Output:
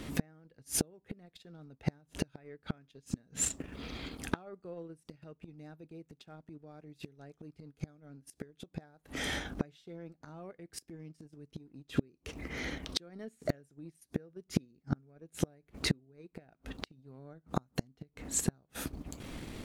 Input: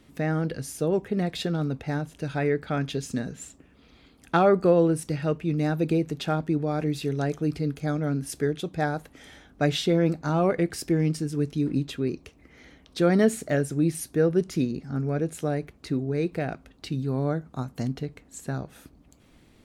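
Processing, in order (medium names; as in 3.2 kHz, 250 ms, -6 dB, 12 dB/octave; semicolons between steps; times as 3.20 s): inverted gate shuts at -24 dBFS, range -38 dB; transient shaper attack -5 dB, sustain -9 dB; trim +14 dB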